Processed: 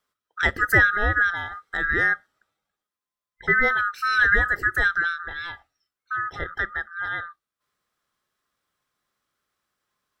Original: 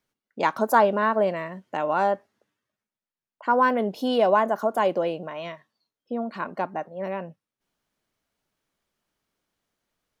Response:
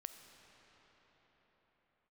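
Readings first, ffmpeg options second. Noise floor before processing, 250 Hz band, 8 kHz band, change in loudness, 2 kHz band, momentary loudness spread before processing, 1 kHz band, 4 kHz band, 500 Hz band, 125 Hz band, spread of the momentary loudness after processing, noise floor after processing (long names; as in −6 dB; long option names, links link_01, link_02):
below −85 dBFS, −8.5 dB, can't be measured, +2.5 dB, +13.5 dB, 13 LU, −4.5 dB, +2.5 dB, −10.5 dB, +7.0 dB, 14 LU, below −85 dBFS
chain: -af "afftfilt=real='real(if(lt(b,960),b+48*(1-2*mod(floor(b/48),2)),b),0)':imag='imag(if(lt(b,960),b+48*(1-2*mod(floor(b/48),2)),b),0)':win_size=2048:overlap=0.75,volume=1dB"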